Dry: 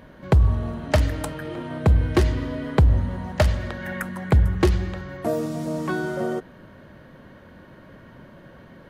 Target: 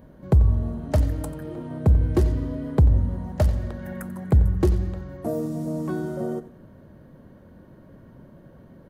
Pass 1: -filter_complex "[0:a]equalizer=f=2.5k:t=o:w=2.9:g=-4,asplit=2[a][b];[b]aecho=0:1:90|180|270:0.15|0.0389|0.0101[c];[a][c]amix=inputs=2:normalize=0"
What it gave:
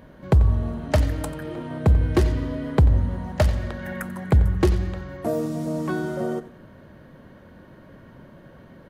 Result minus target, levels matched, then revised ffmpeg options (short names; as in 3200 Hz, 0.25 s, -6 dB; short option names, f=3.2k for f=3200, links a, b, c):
2000 Hz band +8.5 dB
-filter_complex "[0:a]equalizer=f=2.5k:t=o:w=2.9:g=-14.5,asplit=2[a][b];[b]aecho=0:1:90|180|270:0.15|0.0389|0.0101[c];[a][c]amix=inputs=2:normalize=0"